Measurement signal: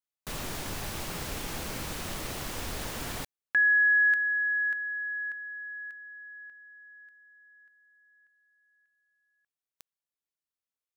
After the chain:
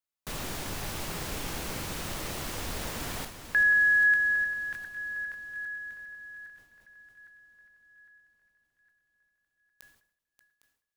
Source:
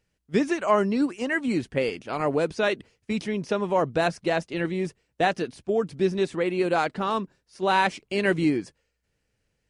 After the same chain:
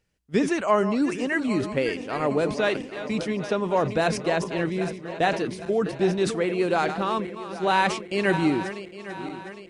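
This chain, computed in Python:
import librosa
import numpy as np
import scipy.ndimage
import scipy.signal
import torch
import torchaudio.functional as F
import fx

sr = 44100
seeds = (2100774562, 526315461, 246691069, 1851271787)

y = fx.reverse_delay_fb(x, sr, ms=404, feedback_pct=69, wet_db=-12)
y = fx.sustainer(y, sr, db_per_s=99.0)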